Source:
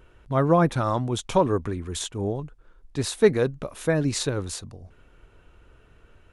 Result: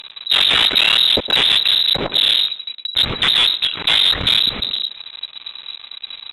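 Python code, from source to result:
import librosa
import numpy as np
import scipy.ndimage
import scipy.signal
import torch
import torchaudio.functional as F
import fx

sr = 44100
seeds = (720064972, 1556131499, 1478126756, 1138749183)

p1 = fx.cycle_switch(x, sr, every=3, mode='muted')
p2 = fx.fold_sine(p1, sr, drive_db=16, ceiling_db=-5.5)
p3 = p1 + F.gain(torch.from_numpy(p2), -4.5).numpy()
p4 = fx.leveller(p3, sr, passes=3)
p5 = fx.freq_invert(p4, sr, carrier_hz=3900)
p6 = p5 + fx.echo_tape(p5, sr, ms=111, feedback_pct=38, wet_db=-10.5, lp_hz=2000.0, drive_db=-2.0, wow_cents=13, dry=0)
p7 = fx.cheby_harmonics(p6, sr, harmonics=(3,), levels_db=(-20,), full_scale_db=3.0)
y = F.gain(torch.from_numpy(p7), -4.5).numpy()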